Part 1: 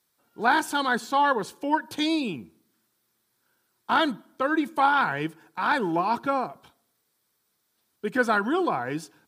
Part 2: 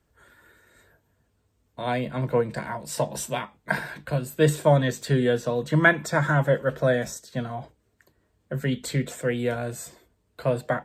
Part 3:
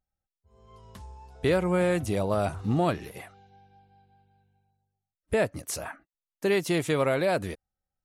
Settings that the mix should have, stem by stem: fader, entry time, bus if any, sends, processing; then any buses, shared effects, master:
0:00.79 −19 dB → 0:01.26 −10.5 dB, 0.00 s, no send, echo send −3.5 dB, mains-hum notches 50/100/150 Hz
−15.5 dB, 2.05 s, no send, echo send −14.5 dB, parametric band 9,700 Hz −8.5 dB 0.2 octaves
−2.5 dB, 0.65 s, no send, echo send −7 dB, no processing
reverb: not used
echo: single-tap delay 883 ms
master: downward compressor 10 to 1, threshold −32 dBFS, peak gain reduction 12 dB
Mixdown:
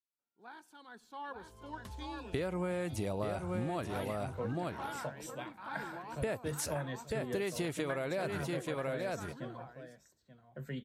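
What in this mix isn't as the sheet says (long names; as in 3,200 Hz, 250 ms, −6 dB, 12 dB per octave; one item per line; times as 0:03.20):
stem 1 −19.0 dB → −30.5 dB
stem 3: entry 0.65 s → 0.90 s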